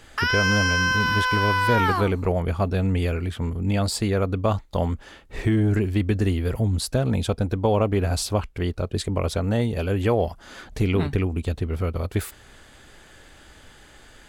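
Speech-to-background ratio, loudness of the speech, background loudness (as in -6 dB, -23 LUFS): -2.5 dB, -24.5 LUFS, -22.0 LUFS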